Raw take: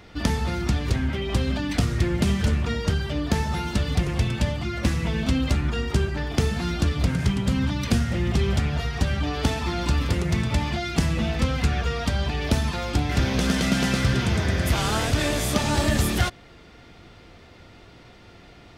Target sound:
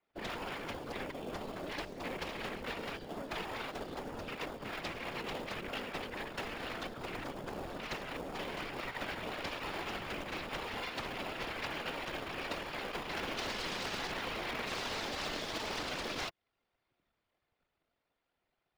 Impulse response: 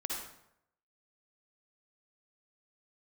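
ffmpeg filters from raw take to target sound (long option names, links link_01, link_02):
-filter_complex "[0:a]afwtdn=0.0224,aeval=exprs='0.282*(cos(1*acos(clip(val(0)/0.282,-1,1)))-cos(1*PI/2))+0.0355*(cos(3*acos(clip(val(0)/0.282,-1,1)))-cos(3*PI/2))+0.00355*(cos(5*acos(clip(val(0)/0.282,-1,1)))-cos(5*PI/2))+0.0126*(cos(7*acos(clip(val(0)/0.282,-1,1)))-cos(7*PI/2))+0.1*(cos(8*acos(clip(val(0)/0.282,-1,1)))-cos(8*PI/2))':channel_layout=same,acrossover=split=200|400|2200[link_01][link_02][link_03][link_04];[link_01]acompressor=threshold=-21dB:ratio=4[link_05];[link_02]acompressor=threshold=-30dB:ratio=4[link_06];[link_03]acompressor=threshold=-36dB:ratio=4[link_07];[link_04]acompressor=threshold=-31dB:ratio=4[link_08];[link_05][link_06][link_07][link_08]amix=inputs=4:normalize=0,acrossover=split=450 5100:gain=0.0631 1 0.141[link_09][link_10][link_11];[link_09][link_10][link_11]amix=inputs=3:normalize=0,afftfilt=real='hypot(re,im)*cos(2*PI*random(0))':imag='hypot(re,im)*sin(2*PI*random(1))':win_size=512:overlap=0.75,asplit=2[link_12][link_13];[link_13]asetrate=22050,aresample=44100,atempo=2,volume=-4dB[link_14];[link_12][link_14]amix=inputs=2:normalize=0,asplit=2[link_15][link_16];[link_16]acrusher=samples=22:mix=1:aa=0.000001,volume=-12dB[link_17];[link_15][link_17]amix=inputs=2:normalize=0,adynamicequalizer=threshold=0.00251:dfrequency=4100:dqfactor=0.7:tfrequency=4100:tqfactor=0.7:attack=5:release=100:ratio=0.375:range=2.5:mode=boostabove:tftype=highshelf,volume=-2.5dB"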